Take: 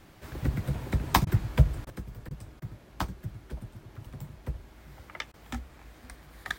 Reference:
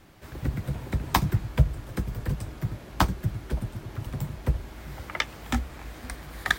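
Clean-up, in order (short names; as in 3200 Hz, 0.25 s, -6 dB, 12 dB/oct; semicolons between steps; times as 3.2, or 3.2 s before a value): interpolate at 1.25/1.85/2.29/2.6/5.32, 17 ms; gain 0 dB, from 1.9 s +10 dB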